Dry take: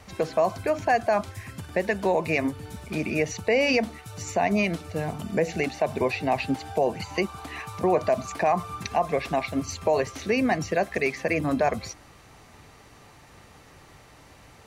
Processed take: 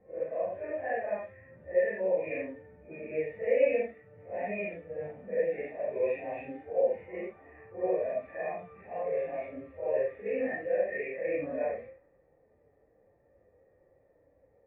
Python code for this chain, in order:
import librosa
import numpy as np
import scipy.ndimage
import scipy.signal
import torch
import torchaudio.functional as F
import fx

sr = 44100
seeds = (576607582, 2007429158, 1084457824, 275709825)

y = fx.phase_scramble(x, sr, seeds[0], window_ms=200)
y = fx.hpss(y, sr, part='percussive', gain_db=-7)
y = fx.env_lowpass(y, sr, base_hz=710.0, full_db=-19.5)
y = fx.formant_cascade(y, sr, vowel='e')
y = fx.peak_eq(y, sr, hz=130.0, db=-4.0, octaves=1.0)
y = y * librosa.db_to_amplitude(4.0)